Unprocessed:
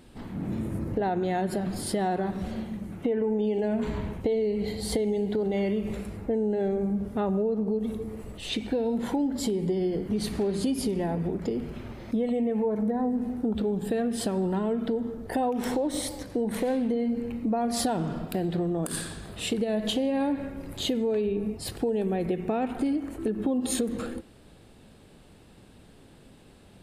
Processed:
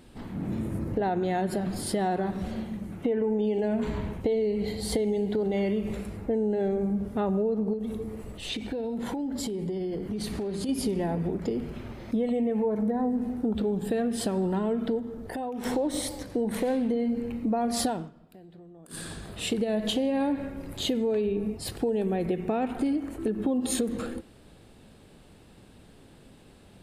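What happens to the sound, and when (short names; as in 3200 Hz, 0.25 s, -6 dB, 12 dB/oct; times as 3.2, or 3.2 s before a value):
7.73–10.69 compressor, threshold -28 dBFS
14.99–15.65 compressor 2:1, threshold -35 dBFS
17.85–19.12 dip -21.5 dB, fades 0.26 s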